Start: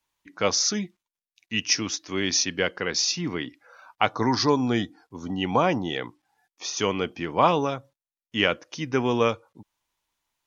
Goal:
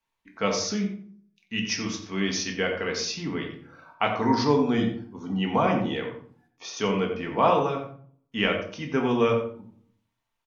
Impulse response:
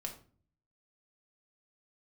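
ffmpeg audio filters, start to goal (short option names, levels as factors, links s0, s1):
-filter_complex "[0:a]bass=f=250:g=0,treble=f=4000:g=-7,asplit=2[s0][s1];[s1]adelay=89,lowpass=f=2600:p=1,volume=0.398,asplit=2[s2][s3];[s3]adelay=89,lowpass=f=2600:p=1,volume=0.21,asplit=2[s4][s5];[s5]adelay=89,lowpass=f=2600:p=1,volume=0.21[s6];[s0][s2][s4][s6]amix=inputs=4:normalize=0[s7];[1:a]atrim=start_sample=2205[s8];[s7][s8]afir=irnorm=-1:irlink=0"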